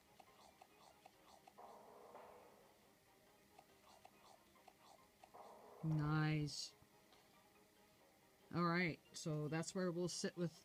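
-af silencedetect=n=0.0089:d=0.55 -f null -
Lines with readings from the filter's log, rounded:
silence_start: 0.00
silence_end: 5.84 | silence_duration: 5.84
silence_start: 6.65
silence_end: 8.55 | silence_duration: 1.90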